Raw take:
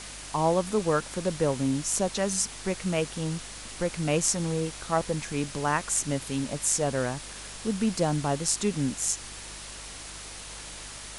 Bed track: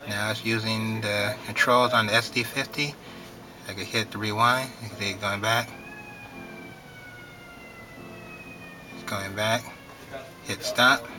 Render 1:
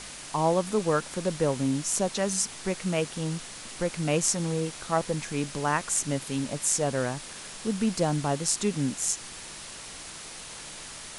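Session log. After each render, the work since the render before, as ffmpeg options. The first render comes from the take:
-af "bandreject=f=50:t=h:w=4,bandreject=f=100:t=h:w=4"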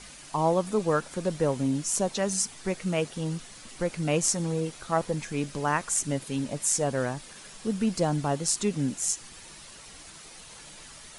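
-af "afftdn=nr=8:nf=-42"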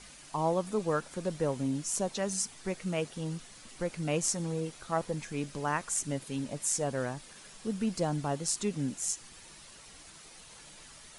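-af "volume=0.562"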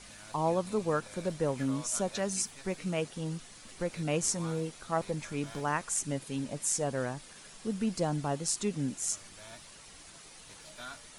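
-filter_complex "[1:a]volume=0.0473[s0];[0:a][s0]amix=inputs=2:normalize=0"

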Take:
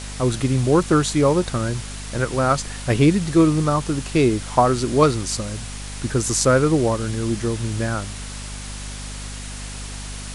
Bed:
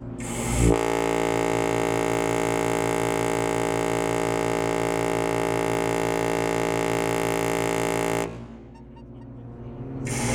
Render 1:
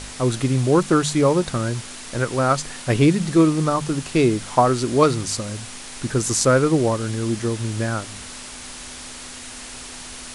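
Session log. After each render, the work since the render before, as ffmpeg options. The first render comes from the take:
-af "bandreject=f=50:t=h:w=4,bandreject=f=100:t=h:w=4,bandreject=f=150:t=h:w=4,bandreject=f=200:t=h:w=4"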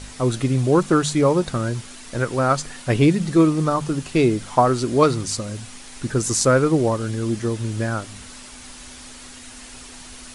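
-af "afftdn=nr=6:nf=-37"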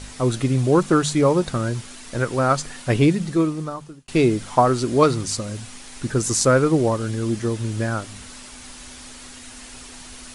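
-filter_complex "[0:a]asplit=2[s0][s1];[s0]atrim=end=4.08,asetpts=PTS-STARTPTS,afade=t=out:st=2.96:d=1.12[s2];[s1]atrim=start=4.08,asetpts=PTS-STARTPTS,afade=t=in:d=0.004:c=hsin[s3];[s2][s3]concat=n=2:v=0:a=1"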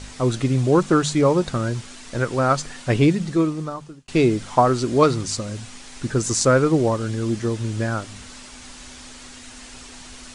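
-af "lowpass=f=8700:w=0.5412,lowpass=f=8700:w=1.3066"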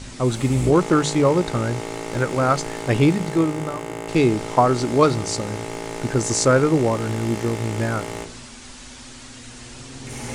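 -filter_complex "[1:a]volume=0.447[s0];[0:a][s0]amix=inputs=2:normalize=0"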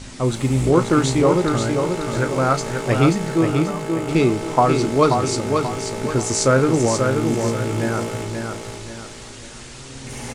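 -filter_complex "[0:a]asplit=2[s0][s1];[s1]adelay=30,volume=0.224[s2];[s0][s2]amix=inputs=2:normalize=0,aecho=1:1:534|1068|1602|2136|2670:0.562|0.214|0.0812|0.0309|0.0117"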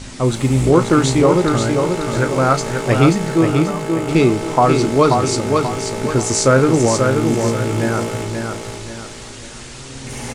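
-af "volume=1.5,alimiter=limit=0.794:level=0:latency=1"

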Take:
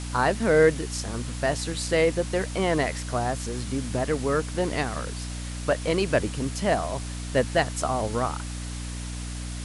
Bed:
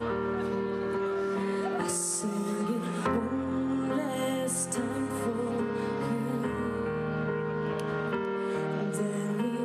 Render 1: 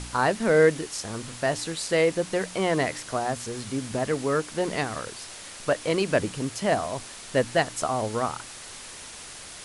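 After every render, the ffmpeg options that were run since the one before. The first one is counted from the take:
-af "bandreject=f=60:t=h:w=4,bandreject=f=120:t=h:w=4,bandreject=f=180:t=h:w=4,bandreject=f=240:t=h:w=4,bandreject=f=300:t=h:w=4"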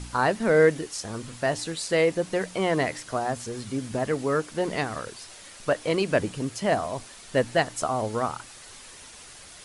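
-af "afftdn=nr=6:nf=-42"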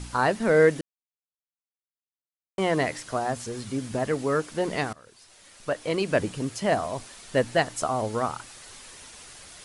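-filter_complex "[0:a]asplit=4[s0][s1][s2][s3];[s0]atrim=end=0.81,asetpts=PTS-STARTPTS,afade=t=out:st=0.806:d=0.004:c=hsin[s4];[s1]atrim=start=0.81:end=2.58,asetpts=PTS-STARTPTS,volume=0[s5];[s2]atrim=start=2.58:end=4.93,asetpts=PTS-STARTPTS,afade=t=in:d=0.004:c=hsin,afade=t=out:st=2.346:d=0.004:c=hsin:silence=0.0794328[s6];[s3]atrim=start=4.93,asetpts=PTS-STARTPTS,afade=t=in:d=1.29:silence=0.0794328[s7];[s4][s5][s6][s7]concat=n=4:v=0:a=1"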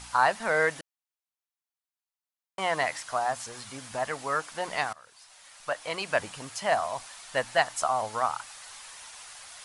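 -af "lowshelf=f=550:t=q:w=1.5:g=-12.5"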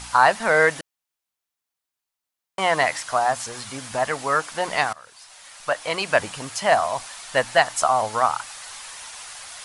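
-af "volume=2.37,alimiter=limit=0.708:level=0:latency=1"

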